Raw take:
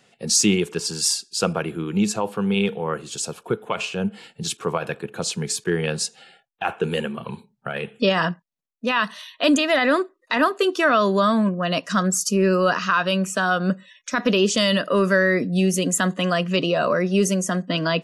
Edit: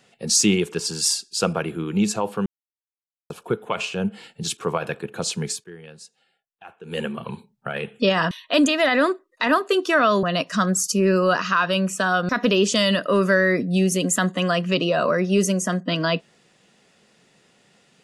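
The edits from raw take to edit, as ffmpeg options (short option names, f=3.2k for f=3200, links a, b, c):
-filter_complex "[0:a]asplit=8[a][b][c][d][e][f][g][h];[a]atrim=end=2.46,asetpts=PTS-STARTPTS,afade=t=out:st=2.456:d=0.004:c=hsin[i];[b]atrim=start=2.46:end=3.3,asetpts=PTS-STARTPTS,volume=0[j];[c]atrim=start=3.3:end=5.65,asetpts=PTS-STARTPTS,afade=t=in:d=0.004:c=hsin,afade=t=out:st=2.17:d=0.18:silence=0.11885[k];[d]atrim=start=5.65:end=6.85,asetpts=PTS-STARTPTS,volume=-18.5dB[l];[e]atrim=start=6.85:end=8.312,asetpts=PTS-STARTPTS,afade=t=in:d=0.18:silence=0.11885[m];[f]atrim=start=9.208:end=11.132[n];[g]atrim=start=11.598:end=13.662[o];[h]atrim=start=14.108[p];[i][j][k][l][m]concat=n=5:v=0:a=1[q];[q][n]acrossfade=d=0.004:c1=hsin:c2=hsin[r];[r][o]acrossfade=d=0.004:c1=hsin:c2=hsin[s];[s][p]acrossfade=d=0.004:c1=hsin:c2=hsin"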